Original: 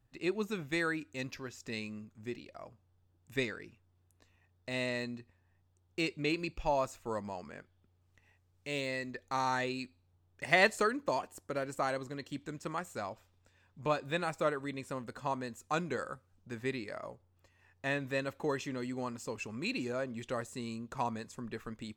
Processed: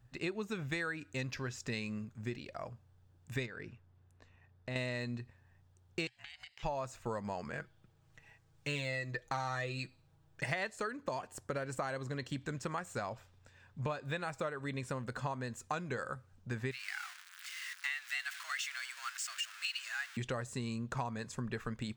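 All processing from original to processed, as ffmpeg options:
-filter_complex "[0:a]asettb=1/sr,asplit=3[a][b][c];[a]atrim=end=3.464[d];[b]atrim=start=3.46:end=4.76,asetpts=PTS-STARTPTS,afade=t=in:d=0.004:c=qsin,afade=t=out:st=1.296:d=0.004:c=qsin,highshelf=f=4.3k:g=-11,acompressor=threshold=-43dB:ratio=4:attack=3.2:release=140:knee=1:detection=peak[e];[c]atrim=start=4.756[f];[d][e]acrossfade=d=0.004:c1=hsin:c2=qsin[g];[g][f]acrossfade=d=0.004:c1=qsin:c2=hsin,asettb=1/sr,asplit=3[h][i][j];[h]atrim=end=6.074[k];[i]atrim=start=6.07:end=6.63,asetpts=PTS-STARTPTS,afade=t=in:d=0.004:c=qsin,afade=t=out:st=0.556:d=0.004:c=qsin,highpass=1.4k,acompressor=threshold=-49dB:ratio=12:attack=3.2:release=140:knee=1:detection=peak,aeval=exprs='val(0)*sin(2*PI*400*n/s)':c=same[l];[j]atrim=start=6.626[m];[k][l]acrossfade=d=0.004:c1=hsin:c2=qsin[n];[n][m]acrossfade=d=0.004:c1=qsin:c2=hsin,asettb=1/sr,asplit=3[o][p][q];[o]atrim=end=7.534[r];[p]atrim=start=7.53:end=10.5,asetpts=PTS-STARTPTS,afade=t=in:d=0.004:c=qsin,afade=t=out:st=2.966:d=0.004:c=qsin,aecho=1:1:6.2:0.71,atrim=end_sample=130977,asoftclip=type=hard:threshold=-22.5dB[s];[q]atrim=start=10.496[t];[r][s]acrossfade=d=0.004:c1=hsin:c2=qsin[u];[u][t]acrossfade=d=0.004:c1=qsin:c2=hsin,asettb=1/sr,asplit=3[v][w][x];[v]atrim=end=16.714[y];[w]atrim=start=16.71:end=20.17,asetpts=PTS-STARTPTS,afade=t=in:d=0.004:c=qsin,afade=t=out:st=3.456:d=0.004:c=qsin,aeval=exprs='val(0)+0.5*0.00794*sgn(val(0))':c=same,highpass=f=1.3k:w=0.5412,highpass=f=1.3k:w=1.3066,afreqshift=180[z];[x]atrim=start=20.166[aa];[y][z]acrossfade=d=0.004:c1=hsin:c2=qsin[ab];[ab][aa]acrossfade=d=0.004:c1=qsin:c2=hsin,equalizer=f=125:t=o:w=0.33:g=8,equalizer=f=315:t=o:w=0.33:g=-5,equalizer=f=1.6k:t=o:w=0.33:g=4,equalizer=f=12.5k:t=o:w=0.33:g=-9,acompressor=threshold=-39dB:ratio=10,volume=5dB"

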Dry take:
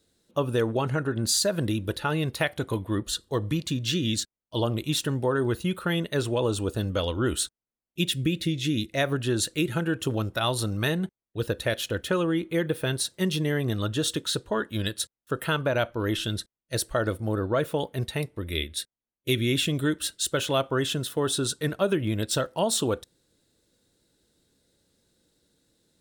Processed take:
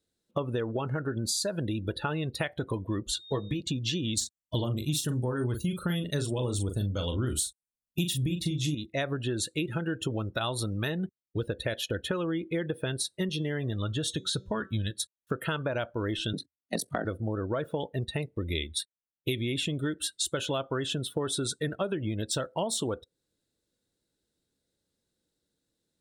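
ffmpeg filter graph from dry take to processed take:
-filter_complex "[0:a]asettb=1/sr,asplit=3[a][b][c];[a]atrim=end=3.154[d];[b]atrim=start=3.15:end=3.61,asetpts=PTS-STARTPTS,afade=t=in:d=0.004:c=qsin,afade=t=out:st=0.456:d=0.004:c=qsin,aeval=exprs='val(0)+0.00708*sin(2*PI*3700*n/s)':c=same,asplit=2[e][f];[f]adelay=15,volume=-6dB[g];[e][g]amix=inputs=2:normalize=0,atrim=end_sample=20286[h];[c]atrim=start=3.606[i];[d][h]acrossfade=d=0.004:c1=hsin:c2=qsin[j];[j][i]acrossfade=d=0.004:c1=qsin:c2=hsin,asettb=1/sr,asplit=3[k][l][m];[k]atrim=end=4.174[n];[l]atrim=start=4.17:end=8.75,asetpts=PTS-STARTPTS,afade=t=in:d=0.004:c=qsin,afade=t=out:st=4.576:d=0.004:c=qsin,bass=f=250:g=9,treble=f=4k:g=10,asplit=2[o][p];[p]adelay=40,volume=-7dB[q];[o][q]amix=inputs=2:normalize=0,atrim=end_sample=201978[r];[m]atrim=start=8.746[s];[n][r]acrossfade=d=0.004:c1=hsin:c2=qsin[t];[t][s]acrossfade=d=0.004:c1=qsin:c2=hsin,asettb=1/sr,asplit=3[u][v][w];[u]atrim=end=13.294[x];[v]atrim=start=13.29:end=14.91,asetpts=PTS-STARTPTS,afade=t=in:d=0.004:c=qsin,afade=t=out:st=1.616:d=0.004:c=qsin,bandreject=f=190.7:t=h:w=4,bandreject=f=381.4:t=h:w=4,bandreject=f=572.1:t=h:w=4,bandreject=f=762.8:t=h:w=4,bandreject=f=953.5:t=h:w=4,bandreject=f=1.1442k:t=h:w=4,bandreject=f=1.3349k:t=h:w=4,bandreject=f=1.5256k:t=h:w=4,bandreject=f=1.7163k:t=h:w=4,bandreject=f=1.907k:t=h:w=4,bandreject=f=2.0977k:t=h:w=4,bandreject=f=2.2884k:t=h:w=4,bandreject=f=2.4791k:t=h:w=4,bandreject=f=2.6698k:t=h:w=4,bandreject=f=2.8605k:t=h:w=4,bandreject=f=3.0512k:t=h:w=4,bandreject=f=3.2419k:t=h:w=4,bandreject=f=3.4326k:t=h:w=4,bandreject=f=3.6233k:t=h:w=4,bandreject=f=3.814k:t=h:w=4,bandreject=f=4.0047k:t=h:w=4,bandreject=f=4.1954k:t=h:w=4,bandreject=f=4.3861k:t=h:w=4,bandreject=f=4.5768k:t=h:w=4,bandreject=f=4.7675k:t=h:w=4,bandreject=f=4.9582k:t=h:w=4,bandreject=f=5.1489k:t=h:w=4,bandreject=f=5.3396k:t=h:w=4,bandreject=f=5.5303k:t=h:w=4,bandreject=f=5.721k:t=h:w=4,bandreject=f=5.9117k:t=h:w=4,bandreject=f=6.1024k:t=h:w=4,bandreject=f=6.2931k:t=h:w=4,bandreject=f=6.4838k:t=h:w=4,bandreject=f=6.6745k:t=h:w=4,bandreject=f=6.8652k:t=h:w=4,bandreject=f=7.0559k:t=h:w=4,bandreject=f=7.2466k:t=h:w=4,asubboost=boost=8.5:cutoff=170,highpass=f=110:p=1[y];[w]atrim=start=14.906[z];[x][y]acrossfade=d=0.004:c1=hsin:c2=qsin[aa];[aa][z]acrossfade=d=0.004:c1=qsin:c2=hsin,asettb=1/sr,asplit=3[ab][ac][ad];[ab]atrim=end=16.334[ae];[ac]atrim=start=16.33:end=17.05,asetpts=PTS-STARTPTS,afade=t=in:d=0.004:c=qsin,afade=t=out:st=0.716:d=0.004:c=qsin,aeval=exprs='val(0)*sin(2*PI*23*n/s)':c=same,equalizer=f=200:w=3:g=8,afreqshift=77[af];[ad]atrim=start=17.046[ag];[ae][af]acrossfade=d=0.004:c1=hsin:c2=qsin[ah];[ah][ag]acrossfade=d=0.004:c1=qsin:c2=hsin,afftdn=nr=20:nf=-39,acompressor=threshold=-36dB:ratio=6,volume=7.5dB"

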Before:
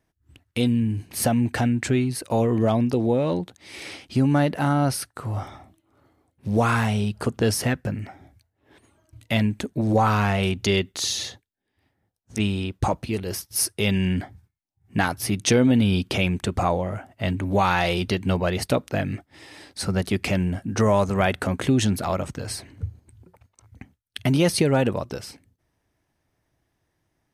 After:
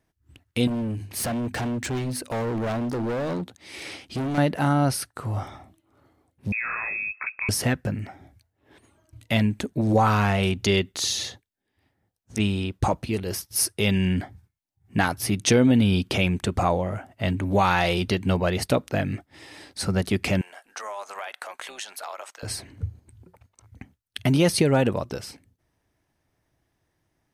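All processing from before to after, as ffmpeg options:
-filter_complex "[0:a]asettb=1/sr,asplit=3[a][b][c];[a]atrim=end=0.674[d];[b]atrim=start=0.67:end=4.38,asetpts=PTS-STARTPTS,afade=t=in:d=0.004:c=qsin,afade=t=out:st=3.706:d=0.004:c=qsin,bandreject=f=50:t=h:w=6,bandreject=f=100:t=h:w=6,bandreject=f=150:t=h:w=6,bandreject=f=200:t=h:w=6,bandreject=f=250:t=h:w=6,volume=25dB,asoftclip=hard,volume=-25dB[e];[c]atrim=start=4.376[f];[d][e]acrossfade=d=0.004:c1=hsin:c2=qsin[g];[g][f]acrossfade=d=0.004:c1=qsin:c2=hsin,asettb=1/sr,asplit=3[h][i][j];[h]atrim=end=6.524[k];[i]atrim=start=6.52:end=7.49,asetpts=PTS-STARTPTS,afade=t=in:d=0.004:c=qsin,afade=t=out:st=0.966:d=0.004:c=qsin,lowshelf=f=120:g=-9,acompressor=threshold=-25dB:ratio=6:attack=3.2:release=140:knee=1:detection=peak,lowpass=f=2.3k:t=q:w=0.5098,lowpass=f=2.3k:t=q:w=0.6013,lowpass=f=2.3k:t=q:w=0.9,lowpass=f=2.3k:t=q:w=2.563,afreqshift=-2700[l];[j]atrim=start=7.486[m];[k][l]acrossfade=d=0.004:c1=hsin:c2=qsin[n];[n][m]acrossfade=d=0.004:c1=qsin:c2=hsin,asettb=1/sr,asplit=3[o][p][q];[o]atrim=end=20.414[r];[p]atrim=start=20.41:end=22.43,asetpts=PTS-STARTPTS,afade=t=in:d=0.004:c=qsin,afade=t=out:st=2.016:d=0.004:c=qsin,highpass=f=690:w=0.5412,highpass=f=690:w=1.3066,acompressor=threshold=-29dB:ratio=6:attack=3.2:release=140:knee=1:detection=peak,tremolo=f=210:d=0.4[s];[q]atrim=start=22.426[t];[r][s]acrossfade=d=0.004:c1=hsin:c2=qsin[u];[u][t]acrossfade=d=0.004:c1=qsin:c2=hsin"

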